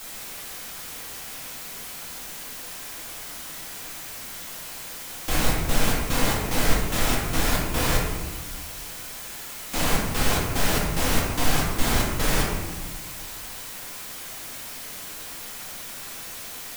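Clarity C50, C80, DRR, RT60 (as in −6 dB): 1.5 dB, 4.0 dB, −4.5 dB, 1.4 s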